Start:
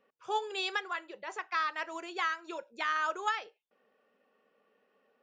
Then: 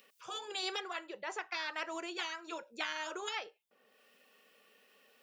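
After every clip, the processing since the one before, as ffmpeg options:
-filter_complex "[0:a]acrossover=split=2400[s0][s1];[s1]acompressor=mode=upward:threshold=0.00158:ratio=2.5[s2];[s0][s2]amix=inputs=2:normalize=0,highshelf=f=8100:g=5,afftfilt=real='re*lt(hypot(re,im),0.1)':imag='im*lt(hypot(re,im),0.1)':win_size=1024:overlap=0.75,volume=1.12"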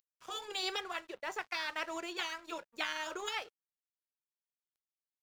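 -af "aeval=exprs='sgn(val(0))*max(abs(val(0))-0.00178,0)':c=same,volume=1.26"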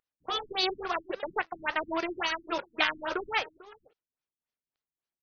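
-filter_complex "[0:a]asplit=2[s0][s1];[s1]acrusher=bits=6:mix=0:aa=0.000001,volume=0.668[s2];[s0][s2]amix=inputs=2:normalize=0,aecho=1:1:445:0.106,afftfilt=real='re*lt(b*sr/1024,300*pow(6600/300,0.5+0.5*sin(2*PI*3.6*pts/sr)))':imag='im*lt(b*sr/1024,300*pow(6600/300,0.5+0.5*sin(2*PI*3.6*pts/sr)))':win_size=1024:overlap=0.75,volume=2"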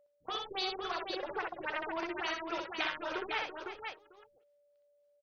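-filter_complex "[0:a]acompressor=threshold=0.01:ratio=1.5,aeval=exprs='val(0)+0.000708*sin(2*PI*580*n/s)':c=same,asplit=2[s0][s1];[s1]aecho=0:1:63|335|505:0.596|0.266|0.531[s2];[s0][s2]amix=inputs=2:normalize=0,volume=0.75"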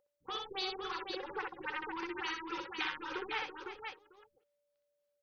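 -af "asuperstop=centerf=650:order=8:qfactor=3.4,volume=0.794"

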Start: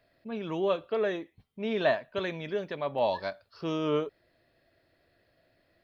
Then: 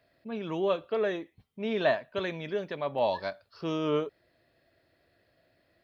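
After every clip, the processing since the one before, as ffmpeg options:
-af "highpass=42"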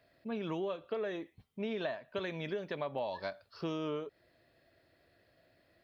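-af "acompressor=threshold=0.0224:ratio=16"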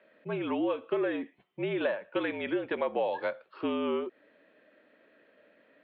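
-af "highpass=f=280:t=q:w=0.5412,highpass=f=280:t=q:w=1.307,lowpass=f=3200:t=q:w=0.5176,lowpass=f=3200:t=q:w=0.7071,lowpass=f=3200:t=q:w=1.932,afreqshift=-56,volume=2.37"

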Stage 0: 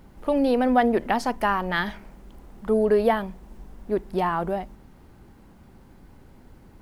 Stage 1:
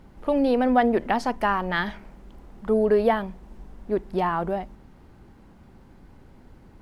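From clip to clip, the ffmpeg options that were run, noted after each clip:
-af "highshelf=f=9000:g=-10.5"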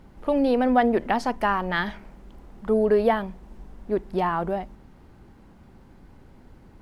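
-af anull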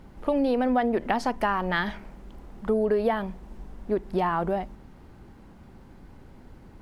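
-af "acompressor=threshold=0.0708:ratio=3,volume=1.19"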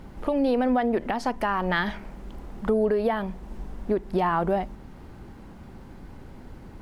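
-af "alimiter=limit=0.112:level=0:latency=1:release=482,volume=1.78"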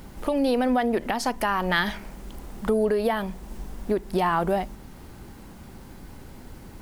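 -af "crystalizer=i=3:c=0"

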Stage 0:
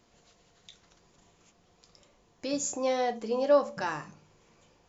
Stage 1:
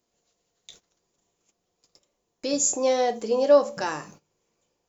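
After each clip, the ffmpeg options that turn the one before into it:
-af "aemphasis=mode=production:type=75fm,agate=range=0.141:threshold=0.00282:ratio=16:detection=peak,equalizer=f=440:t=o:w=1.9:g=7.5"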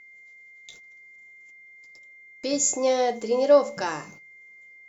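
-af "aeval=exprs='val(0)+0.00447*sin(2*PI*2100*n/s)':c=same"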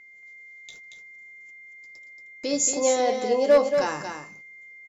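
-filter_complex "[0:a]volume=3.55,asoftclip=hard,volume=0.282,asplit=2[s0][s1];[s1]aecho=0:1:230:0.473[s2];[s0][s2]amix=inputs=2:normalize=0"

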